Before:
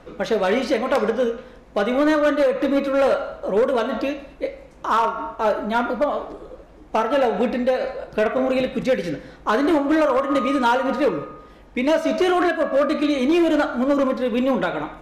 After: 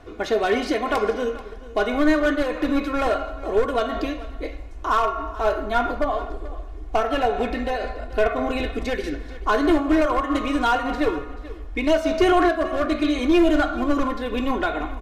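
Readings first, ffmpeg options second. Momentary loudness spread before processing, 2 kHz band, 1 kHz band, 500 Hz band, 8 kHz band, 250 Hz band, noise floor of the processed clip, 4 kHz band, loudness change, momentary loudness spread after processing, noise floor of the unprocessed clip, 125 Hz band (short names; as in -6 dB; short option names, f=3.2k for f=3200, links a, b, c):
10 LU, 0.0 dB, -0.5 dB, -3.0 dB, n/a, -1.0 dB, -37 dBFS, 0.0 dB, -1.5 dB, 11 LU, -46 dBFS, +2.5 dB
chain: -af "equalizer=f=81:w=3:g=13,aecho=1:1:2.8:0.65,asubboost=boost=8.5:cutoff=51,aecho=1:1:434:0.133,volume=-2dB"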